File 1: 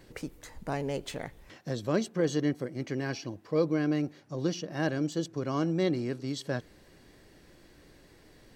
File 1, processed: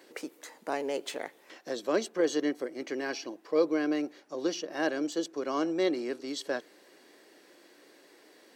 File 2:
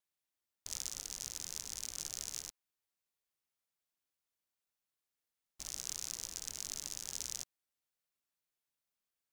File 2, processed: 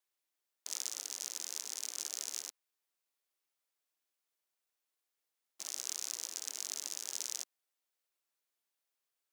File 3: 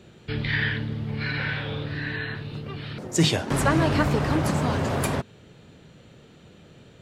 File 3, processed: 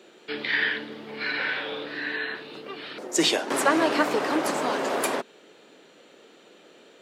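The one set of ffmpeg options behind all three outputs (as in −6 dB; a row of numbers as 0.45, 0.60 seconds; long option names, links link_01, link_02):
-af "highpass=frequency=300:width=0.5412,highpass=frequency=300:width=1.3066,volume=2dB"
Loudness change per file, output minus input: 0.0, +2.0, 0.0 LU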